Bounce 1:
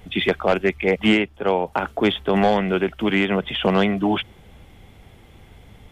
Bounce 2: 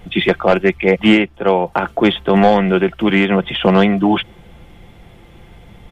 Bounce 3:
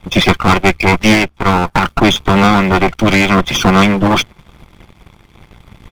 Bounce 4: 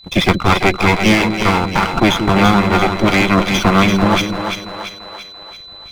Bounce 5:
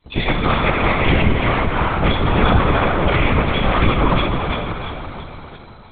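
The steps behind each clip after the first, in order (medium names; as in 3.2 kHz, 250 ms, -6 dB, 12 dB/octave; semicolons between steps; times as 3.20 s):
treble shelf 4.2 kHz -6 dB; comb 5.8 ms, depth 37%; trim +5.5 dB
comb filter that takes the minimum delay 0.87 ms; harmonic-percussive split percussive +6 dB; waveshaping leveller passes 2; trim -4 dB
power-law waveshaper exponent 1.4; whistle 4 kHz -39 dBFS; two-band feedback delay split 430 Hz, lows 179 ms, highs 339 ms, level -6 dB; trim -1 dB
in parallel at -7.5 dB: bit crusher 5-bit; on the sum: plate-style reverb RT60 3.5 s, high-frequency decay 0.55×, DRR -1.5 dB; LPC vocoder at 8 kHz whisper; trim -9.5 dB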